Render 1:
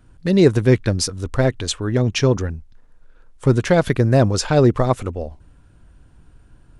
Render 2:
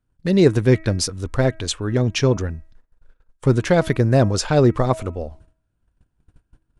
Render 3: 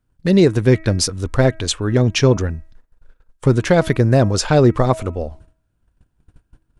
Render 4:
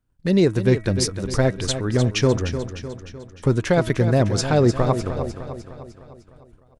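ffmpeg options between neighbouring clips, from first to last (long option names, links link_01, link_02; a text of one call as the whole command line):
ffmpeg -i in.wav -af "agate=range=-21dB:threshold=-43dB:ratio=16:detection=peak,bandreject=frequency=320.5:width_type=h:width=4,bandreject=frequency=641:width_type=h:width=4,bandreject=frequency=961.5:width_type=h:width=4,bandreject=frequency=1282:width_type=h:width=4,bandreject=frequency=1602.5:width_type=h:width=4,bandreject=frequency=1923:width_type=h:width=4,bandreject=frequency=2243.5:width_type=h:width=4,bandreject=frequency=2564:width_type=h:width=4,volume=-1dB" out.wav
ffmpeg -i in.wav -af "alimiter=limit=-7dB:level=0:latency=1:release=296,volume=4dB" out.wav
ffmpeg -i in.wav -af "aecho=1:1:303|606|909|1212|1515|1818:0.316|0.168|0.0888|0.0471|0.025|0.0132,volume=-4.5dB" out.wav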